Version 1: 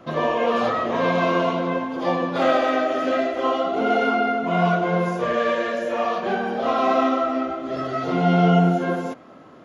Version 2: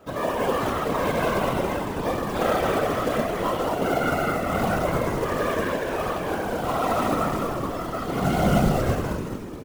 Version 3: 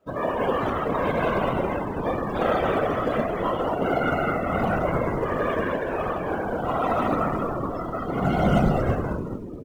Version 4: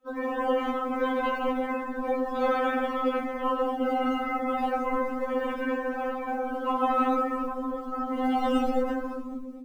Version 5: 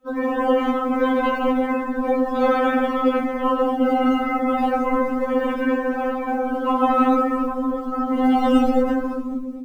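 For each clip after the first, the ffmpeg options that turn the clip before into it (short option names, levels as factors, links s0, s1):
-filter_complex "[0:a]asplit=9[s0][s1][s2][s3][s4][s5][s6][s7][s8];[s1]adelay=214,afreqshift=-120,volume=0.631[s9];[s2]adelay=428,afreqshift=-240,volume=0.367[s10];[s3]adelay=642,afreqshift=-360,volume=0.211[s11];[s4]adelay=856,afreqshift=-480,volume=0.123[s12];[s5]adelay=1070,afreqshift=-600,volume=0.0716[s13];[s6]adelay=1284,afreqshift=-720,volume=0.0412[s14];[s7]adelay=1498,afreqshift=-840,volume=0.024[s15];[s8]adelay=1712,afreqshift=-960,volume=0.014[s16];[s0][s9][s10][s11][s12][s13][s14][s15][s16]amix=inputs=9:normalize=0,acrusher=bits=4:mode=log:mix=0:aa=0.000001,afftfilt=real='hypot(re,im)*cos(2*PI*random(0))':imag='hypot(re,im)*sin(2*PI*random(1))':win_size=512:overlap=0.75,volume=1.12"
-af "afftdn=nr=17:nf=-37"
-af "afftfilt=real='re*3.46*eq(mod(b,12),0)':imag='im*3.46*eq(mod(b,12),0)':win_size=2048:overlap=0.75,volume=0.891"
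-af "equalizer=f=79:w=0.43:g=11,volume=1.88"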